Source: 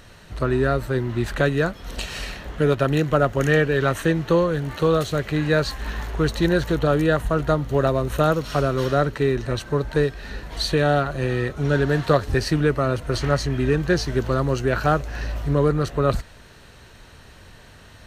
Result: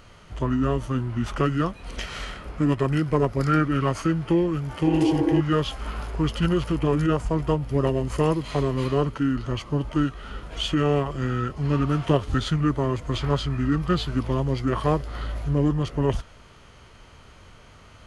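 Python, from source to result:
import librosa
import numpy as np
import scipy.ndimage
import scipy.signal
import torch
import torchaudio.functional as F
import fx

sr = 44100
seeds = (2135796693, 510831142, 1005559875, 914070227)

y = fx.formant_shift(x, sr, semitones=-5)
y = fx.spec_repair(y, sr, seeds[0], start_s=4.89, length_s=0.49, low_hz=240.0, high_hz=1600.0, source='before')
y = y * 10.0 ** (-2.5 / 20.0)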